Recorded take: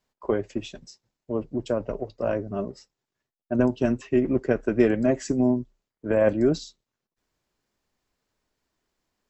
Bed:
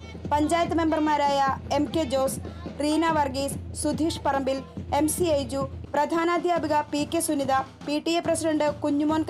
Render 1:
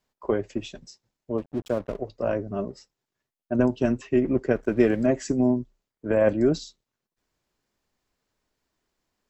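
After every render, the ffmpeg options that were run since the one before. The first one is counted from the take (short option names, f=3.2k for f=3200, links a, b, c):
-filter_complex "[0:a]asettb=1/sr,asplit=3[a][b][c];[a]atrim=end=1.384[d];[b]atrim=start=1.38:end=1.99,asetpts=PTS-STARTPTS,afade=t=in:d=0.004:c=qsin,afade=t=out:st=0.606:d=0.004:c=qsin,aeval=exprs='sgn(val(0))*max(abs(val(0))-0.00668,0)':c=same[e];[c]atrim=start=1.986[f];[d][e]acrossfade=d=0.004:c1=hsin:c2=qsin[g];[g][f]acrossfade=d=0.004:c1=qsin:c2=hsin,asettb=1/sr,asplit=3[h][i][j];[h]atrim=end=4.554[k];[i]atrim=start=4.55:end=5.06,asetpts=PTS-STARTPTS,afade=t=in:d=0.004:c=qsin,afade=t=out:st=0.506:d=0.004:c=qsin,aeval=exprs='sgn(val(0))*max(abs(val(0))-0.00224,0)':c=same[l];[j]atrim=start=5.056[m];[k][l]acrossfade=d=0.004:c1=hsin:c2=qsin[n];[n][m]acrossfade=d=0.004:c1=qsin:c2=hsin"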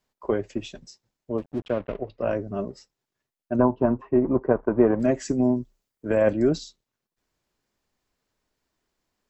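-filter_complex "[0:a]asettb=1/sr,asplit=3[a][b][c];[a]atrim=end=1.624[d];[b]atrim=start=1.62:end=2.29,asetpts=PTS-STARTPTS,afade=t=in:d=0.004:c=qsin,afade=t=out:st=0.666:d=0.004:c=qsin,lowpass=f=2.8k:t=q:w=1.7[e];[c]atrim=start=2.286[f];[d][e]acrossfade=d=0.004:c1=hsin:c2=qsin[g];[g][f]acrossfade=d=0.004:c1=qsin:c2=hsin,asettb=1/sr,asplit=3[h][i][j];[h]atrim=end=3.604[k];[i]atrim=start=3.6:end=5,asetpts=PTS-STARTPTS,afade=t=in:d=0.004:c=qsin,afade=t=out:st=1.396:d=0.004:c=qsin,lowpass=f=1k:t=q:w=4.1[l];[j]atrim=start=4.996[m];[k][l]acrossfade=d=0.004:c1=hsin:c2=qsin[n];[n][m]acrossfade=d=0.004:c1=qsin:c2=hsin,asettb=1/sr,asplit=3[o][p][q];[o]atrim=end=5.514[r];[p]atrim=start=5.51:end=6.23,asetpts=PTS-STARTPTS,afade=t=in:d=0.004:c=qsin,afade=t=out:st=0.716:d=0.004:c=qsin,highshelf=f=5.4k:g=7.5[s];[q]atrim=start=6.226[t];[r][s]acrossfade=d=0.004:c1=hsin:c2=qsin[u];[u][t]acrossfade=d=0.004:c1=qsin:c2=hsin"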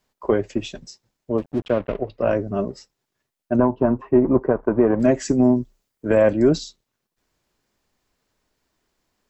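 -af "alimiter=limit=-11dB:level=0:latency=1:release=237,acontrast=44"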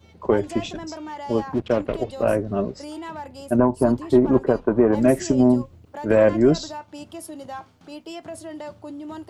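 -filter_complex "[1:a]volume=-11.5dB[a];[0:a][a]amix=inputs=2:normalize=0"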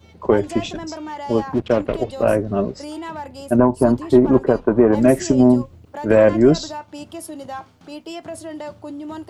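-af "volume=3.5dB,alimiter=limit=-3dB:level=0:latency=1"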